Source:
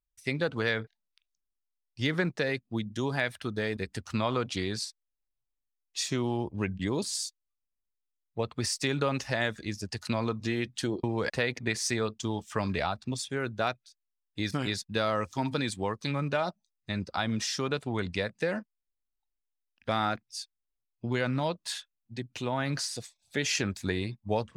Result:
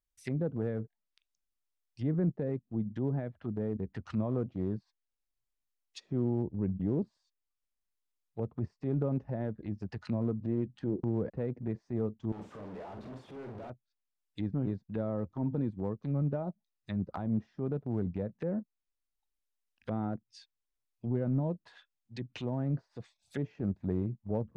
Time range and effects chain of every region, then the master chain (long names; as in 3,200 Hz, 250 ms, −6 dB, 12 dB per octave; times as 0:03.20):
0:12.32–0:13.70: sign of each sample alone + spectral tilt +4.5 dB per octave + double-tracking delay 48 ms −5.5 dB
whole clip: treble cut that deepens with the level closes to 440 Hz, closed at −29.5 dBFS; dynamic equaliser 170 Hz, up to +4 dB, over −43 dBFS, Q 1.5; transient designer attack −6 dB, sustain −2 dB